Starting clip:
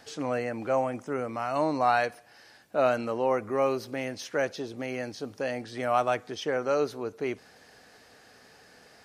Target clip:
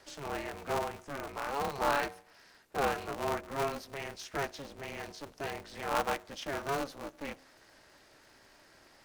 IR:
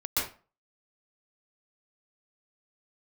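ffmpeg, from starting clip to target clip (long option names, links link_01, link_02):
-filter_complex "[0:a]acrossover=split=460|3000[link_01][link_02][link_03];[link_01]acompressor=threshold=-47dB:ratio=2.5[link_04];[link_04][link_02][link_03]amix=inputs=3:normalize=0,bandreject=frequency=100.5:width_type=h:width=4,bandreject=frequency=201:width_type=h:width=4,bandreject=frequency=301.5:width_type=h:width=4,bandreject=frequency=402:width_type=h:width=4,bandreject=frequency=502.5:width_type=h:width=4,bandreject=frequency=603:width_type=h:width=4,aeval=exprs='val(0)*sgn(sin(2*PI*140*n/s))':channel_layout=same,volume=-5dB"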